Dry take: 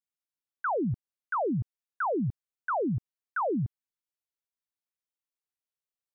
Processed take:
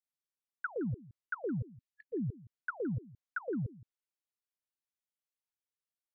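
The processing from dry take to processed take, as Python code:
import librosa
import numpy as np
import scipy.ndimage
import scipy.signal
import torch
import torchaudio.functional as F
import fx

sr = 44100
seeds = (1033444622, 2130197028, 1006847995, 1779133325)

y = fx.env_lowpass_down(x, sr, base_hz=410.0, full_db=-27.0)
y = fx.level_steps(y, sr, step_db=17)
y = fx.spec_erase(y, sr, start_s=1.59, length_s=0.54, low_hz=260.0, high_hz=1700.0)
y = y + 10.0 ** (-19.5 / 20.0) * np.pad(y, (int(167 * sr / 1000.0), 0))[:len(y)]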